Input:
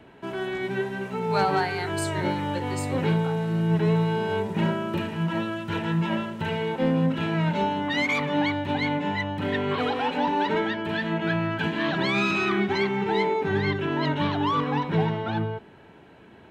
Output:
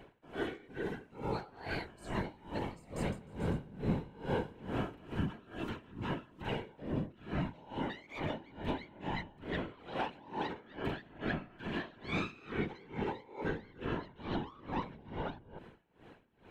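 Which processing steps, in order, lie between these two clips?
low shelf 110 Hz +6 dB; compressor, threshold -27 dBFS, peak gain reduction 10 dB; whisperiser; 2.78–5.15 bouncing-ball echo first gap 0.18 s, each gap 0.9×, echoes 5; dB-linear tremolo 2.3 Hz, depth 24 dB; gain -3.5 dB

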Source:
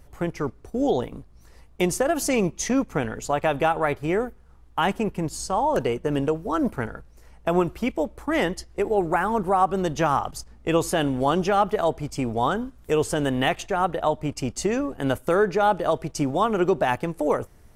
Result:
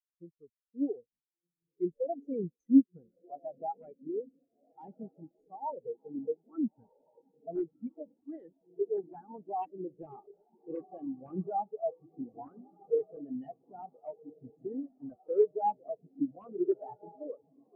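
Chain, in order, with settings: diffused feedback echo 1.379 s, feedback 66%, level -4.5 dB; wrapped overs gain 11.5 dB; spectral expander 4:1

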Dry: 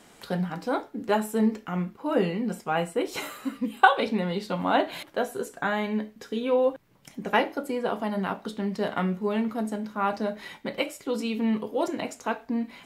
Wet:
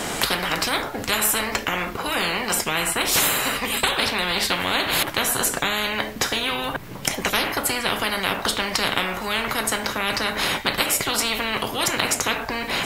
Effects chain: dynamic EQ 5800 Hz, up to -6 dB, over -49 dBFS, Q 0.82; spectral compressor 10:1; gain +2.5 dB

